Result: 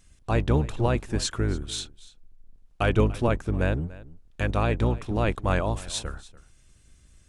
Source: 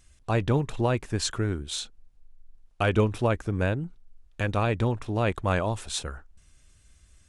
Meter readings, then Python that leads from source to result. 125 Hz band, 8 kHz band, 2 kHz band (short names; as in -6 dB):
+1.0 dB, 0.0 dB, 0.0 dB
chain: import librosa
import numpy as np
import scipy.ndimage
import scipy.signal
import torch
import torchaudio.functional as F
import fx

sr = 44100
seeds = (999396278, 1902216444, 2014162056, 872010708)

y = fx.octave_divider(x, sr, octaves=1, level_db=-1.0)
y = y + 10.0 ** (-19.5 / 20.0) * np.pad(y, (int(290 * sr / 1000.0), 0))[:len(y)]